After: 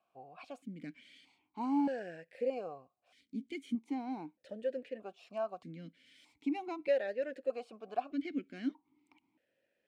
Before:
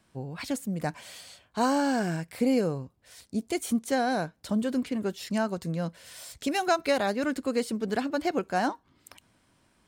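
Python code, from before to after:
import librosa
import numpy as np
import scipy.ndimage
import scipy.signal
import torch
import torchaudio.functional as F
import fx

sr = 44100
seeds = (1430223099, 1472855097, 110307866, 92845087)

y = fx.vowel_held(x, sr, hz=1.6)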